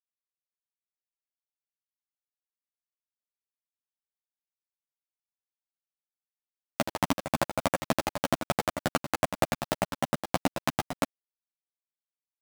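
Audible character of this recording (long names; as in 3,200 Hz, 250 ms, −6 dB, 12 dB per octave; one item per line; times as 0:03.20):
aliases and images of a low sample rate 8,900 Hz, jitter 0%
chopped level 3.3 Hz, depth 60%, duty 65%
a quantiser's noise floor 6 bits, dither none
a shimmering, thickened sound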